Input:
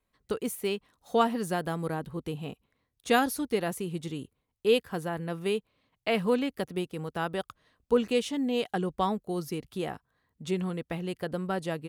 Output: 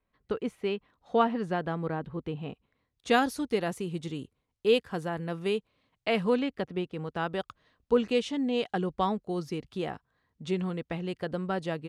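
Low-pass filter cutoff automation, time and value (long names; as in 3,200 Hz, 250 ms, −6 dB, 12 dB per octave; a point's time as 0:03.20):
0:02.42 2,900 Hz
0:03.23 7,600 Hz
0:06.20 7,600 Hz
0:06.71 3,100 Hz
0:07.37 5,800 Hz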